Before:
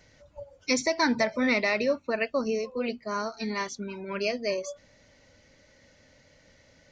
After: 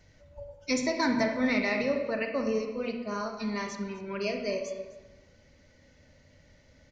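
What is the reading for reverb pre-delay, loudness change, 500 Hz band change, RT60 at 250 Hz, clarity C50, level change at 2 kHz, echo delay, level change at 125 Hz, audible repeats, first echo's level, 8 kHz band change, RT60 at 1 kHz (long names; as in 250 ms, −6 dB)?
33 ms, −2.0 dB, −2.0 dB, 1.3 s, 5.5 dB, −3.5 dB, 256 ms, can't be measured, 1, −19.0 dB, −5.0 dB, 1.1 s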